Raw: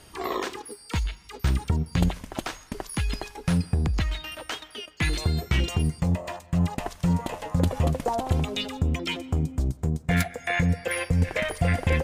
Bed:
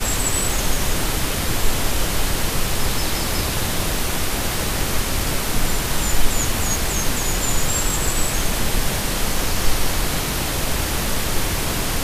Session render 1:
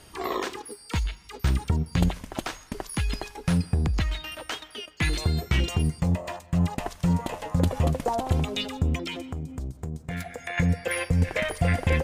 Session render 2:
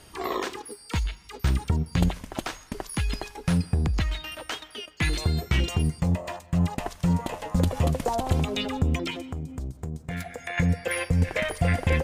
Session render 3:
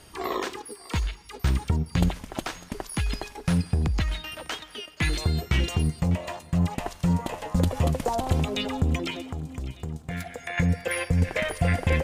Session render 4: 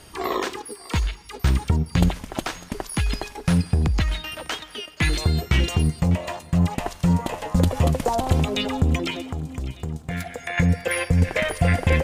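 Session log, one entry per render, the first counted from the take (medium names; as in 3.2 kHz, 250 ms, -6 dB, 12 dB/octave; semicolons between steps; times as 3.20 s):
8.97–10.58 s: compression, threshold -29 dBFS
7.55–9.11 s: three bands compressed up and down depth 70%
thinning echo 600 ms, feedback 50%, high-pass 520 Hz, level -17 dB
trim +4 dB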